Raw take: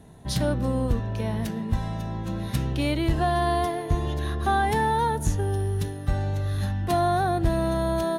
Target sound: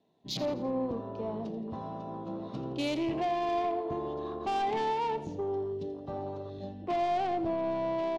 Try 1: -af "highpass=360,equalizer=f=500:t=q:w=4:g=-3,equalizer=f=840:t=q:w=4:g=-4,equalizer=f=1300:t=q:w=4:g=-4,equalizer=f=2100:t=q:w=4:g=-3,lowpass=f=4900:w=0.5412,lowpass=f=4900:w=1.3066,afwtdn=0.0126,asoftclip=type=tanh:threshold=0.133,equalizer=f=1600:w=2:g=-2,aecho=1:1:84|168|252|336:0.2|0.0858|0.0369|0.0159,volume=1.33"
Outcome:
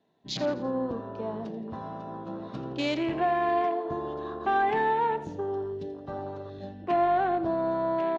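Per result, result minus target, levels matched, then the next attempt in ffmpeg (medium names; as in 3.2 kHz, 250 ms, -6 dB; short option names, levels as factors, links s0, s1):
saturation: distortion -14 dB; 2 kHz band +5.0 dB
-af "highpass=360,equalizer=f=500:t=q:w=4:g=-3,equalizer=f=840:t=q:w=4:g=-4,equalizer=f=1300:t=q:w=4:g=-4,equalizer=f=2100:t=q:w=4:g=-3,lowpass=f=4900:w=0.5412,lowpass=f=4900:w=1.3066,afwtdn=0.0126,asoftclip=type=tanh:threshold=0.0398,equalizer=f=1600:w=2:g=-2,aecho=1:1:84|168|252|336:0.2|0.0858|0.0369|0.0159,volume=1.33"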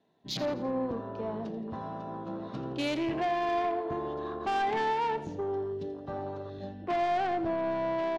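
2 kHz band +5.0 dB
-af "highpass=360,equalizer=f=500:t=q:w=4:g=-3,equalizer=f=840:t=q:w=4:g=-4,equalizer=f=1300:t=q:w=4:g=-4,equalizer=f=2100:t=q:w=4:g=-3,lowpass=f=4900:w=0.5412,lowpass=f=4900:w=1.3066,afwtdn=0.0126,asoftclip=type=tanh:threshold=0.0398,equalizer=f=1600:w=2:g=-11.5,aecho=1:1:84|168|252|336:0.2|0.0858|0.0369|0.0159,volume=1.33"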